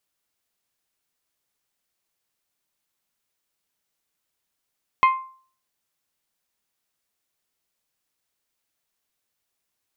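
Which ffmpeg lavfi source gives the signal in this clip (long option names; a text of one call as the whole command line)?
ffmpeg -f lavfi -i "aevalsrc='0.316*pow(10,-3*t/0.46)*sin(2*PI*1050*t)+0.126*pow(10,-3*t/0.283)*sin(2*PI*2100*t)+0.0501*pow(10,-3*t/0.249)*sin(2*PI*2520*t)+0.02*pow(10,-3*t/0.213)*sin(2*PI*3150*t)+0.00794*pow(10,-3*t/0.174)*sin(2*PI*4200*t)':duration=0.89:sample_rate=44100" out.wav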